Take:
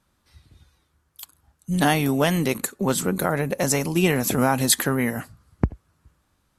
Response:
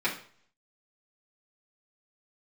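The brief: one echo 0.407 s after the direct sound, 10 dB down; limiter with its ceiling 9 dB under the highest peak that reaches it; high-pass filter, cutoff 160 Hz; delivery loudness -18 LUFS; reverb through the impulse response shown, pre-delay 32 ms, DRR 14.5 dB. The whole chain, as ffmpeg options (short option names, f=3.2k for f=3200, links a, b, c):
-filter_complex "[0:a]highpass=160,alimiter=limit=-13dB:level=0:latency=1,aecho=1:1:407:0.316,asplit=2[a][b];[1:a]atrim=start_sample=2205,adelay=32[c];[b][c]afir=irnorm=-1:irlink=0,volume=-25dB[d];[a][d]amix=inputs=2:normalize=0,volume=7dB"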